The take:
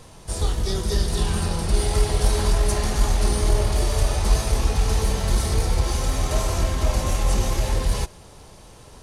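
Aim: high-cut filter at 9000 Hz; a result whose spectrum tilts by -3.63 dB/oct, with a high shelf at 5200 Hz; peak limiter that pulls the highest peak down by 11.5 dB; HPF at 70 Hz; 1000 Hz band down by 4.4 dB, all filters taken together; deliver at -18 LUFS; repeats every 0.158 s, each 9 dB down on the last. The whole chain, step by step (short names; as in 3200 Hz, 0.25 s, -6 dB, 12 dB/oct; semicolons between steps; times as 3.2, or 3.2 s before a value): HPF 70 Hz; LPF 9000 Hz; bell 1000 Hz -6 dB; high shelf 5200 Hz +7 dB; limiter -21.5 dBFS; feedback echo 0.158 s, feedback 35%, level -9 dB; gain +12 dB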